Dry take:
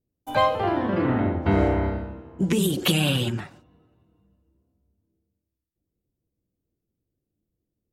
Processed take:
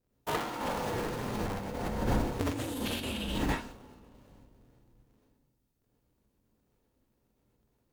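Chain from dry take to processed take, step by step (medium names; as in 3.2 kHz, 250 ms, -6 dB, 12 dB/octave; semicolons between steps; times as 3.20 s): cycle switcher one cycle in 2, inverted; gated-style reverb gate 150 ms rising, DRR -4.5 dB; compressor with a negative ratio -26 dBFS, ratio -1; trim -7.5 dB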